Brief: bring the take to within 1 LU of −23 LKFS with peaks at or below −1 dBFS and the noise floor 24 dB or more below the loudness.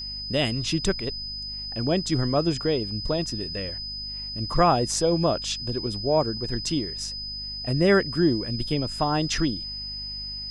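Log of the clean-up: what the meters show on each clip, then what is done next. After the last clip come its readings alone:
mains hum 50 Hz; hum harmonics up to 250 Hz; level of the hum −40 dBFS; interfering tone 5,000 Hz; level of the tone −32 dBFS; integrated loudness −25.5 LKFS; sample peak −8.0 dBFS; target loudness −23.0 LKFS
→ hum removal 50 Hz, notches 5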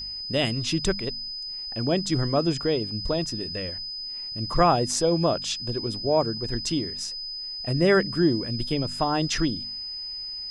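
mains hum none found; interfering tone 5,000 Hz; level of the tone −32 dBFS
→ notch filter 5,000 Hz, Q 30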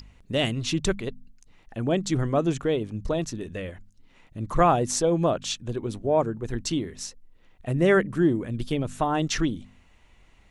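interfering tone none found; integrated loudness −26.0 LKFS; sample peak −7.5 dBFS; target loudness −23.0 LKFS
→ level +3 dB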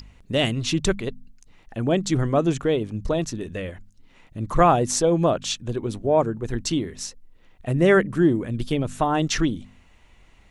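integrated loudness −23.0 LKFS; sample peak −4.5 dBFS; background noise floor −54 dBFS

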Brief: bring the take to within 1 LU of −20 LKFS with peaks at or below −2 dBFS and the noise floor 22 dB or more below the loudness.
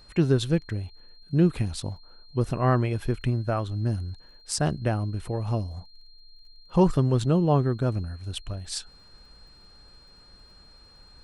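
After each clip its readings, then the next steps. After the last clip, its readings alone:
crackle rate 25 per second; interfering tone 4,200 Hz; level of the tone −53 dBFS; integrated loudness −26.5 LKFS; sample peak −9.0 dBFS; target loudness −20.0 LKFS
→ click removal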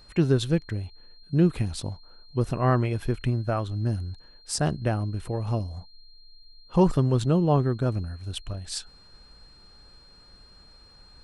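crackle rate 0 per second; interfering tone 4,200 Hz; level of the tone −53 dBFS
→ notch filter 4,200 Hz, Q 30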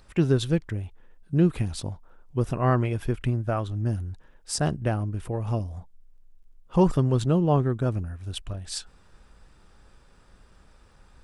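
interfering tone none found; integrated loudness −26.5 LKFS; sample peak −9.0 dBFS; target loudness −20.0 LKFS
→ level +6.5 dB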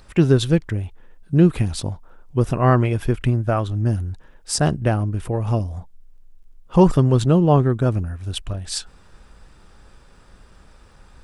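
integrated loudness −20.0 LKFS; sample peak −2.5 dBFS; background noise floor −50 dBFS

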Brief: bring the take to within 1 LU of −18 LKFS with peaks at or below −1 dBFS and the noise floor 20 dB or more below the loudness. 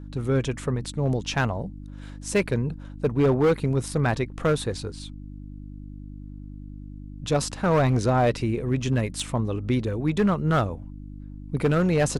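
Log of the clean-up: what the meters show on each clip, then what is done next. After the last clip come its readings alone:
share of clipped samples 1.5%; peaks flattened at −15.0 dBFS; mains hum 50 Hz; hum harmonics up to 300 Hz; level of the hum −37 dBFS; integrated loudness −25.0 LKFS; sample peak −15.0 dBFS; target loudness −18.0 LKFS
→ clipped peaks rebuilt −15 dBFS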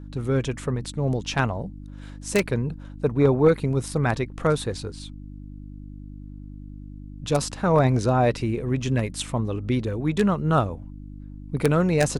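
share of clipped samples 0.0%; mains hum 50 Hz; hum harmonics up to 200 Hz; level of the hum −37 dBFS
→ hum removal 50 Hz, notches 4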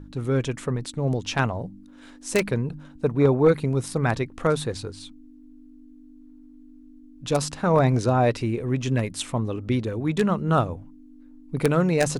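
mains hum none found; integrated loudness −24.0 LKFS; sample peak −5.5 dBFS; target loudness −18.0 LKFS
→ level +6 dB
brickwall limiter −1 dBFS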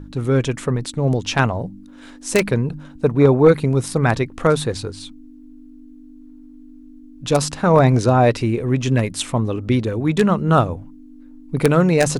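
integrated loudness −18.5 LKFS; sample peak −1.0 dBFS; background noise floor −42 dBFS

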